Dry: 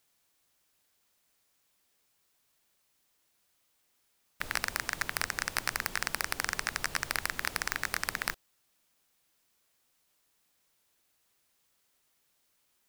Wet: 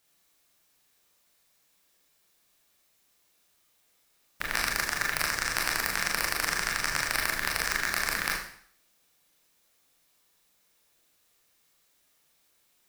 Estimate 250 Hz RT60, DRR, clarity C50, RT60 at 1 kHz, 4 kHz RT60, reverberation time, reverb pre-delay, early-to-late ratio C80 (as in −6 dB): 0.60 s, −1.5 dB, 4.5 dB, 0.60 s, 0.55 s, 0.60 s, 26 ms, 8.0 dB